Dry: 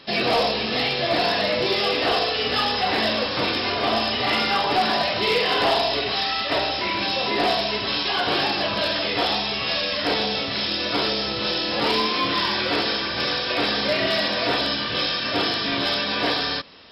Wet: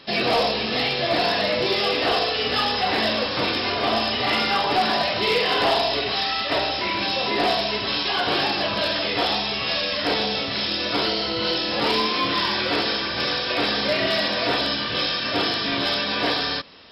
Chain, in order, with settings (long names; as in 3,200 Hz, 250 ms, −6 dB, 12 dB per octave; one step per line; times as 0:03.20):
0:11.05–0:11.56: EQ curve with evenly spaced ripples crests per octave 1.9, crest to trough 9 dB